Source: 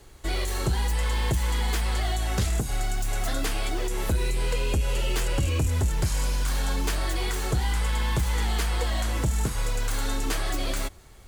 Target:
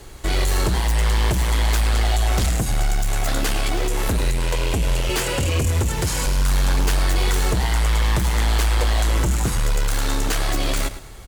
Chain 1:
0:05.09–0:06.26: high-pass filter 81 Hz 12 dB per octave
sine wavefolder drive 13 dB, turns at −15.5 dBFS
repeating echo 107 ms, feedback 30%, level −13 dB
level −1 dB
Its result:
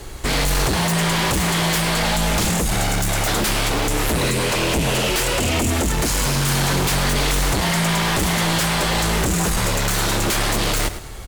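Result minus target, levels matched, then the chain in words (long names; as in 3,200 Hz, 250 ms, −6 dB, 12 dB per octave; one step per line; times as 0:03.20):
sine wavefolder: distortion +24 dB
0:05.09–0:06.26: high-pass filter 81 Hz 12 dB per octave
sine wavefolder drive 7 dB, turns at −15.5 dBFS
repeating echo 107 ms, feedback 30%, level −13 dB
level −1 dB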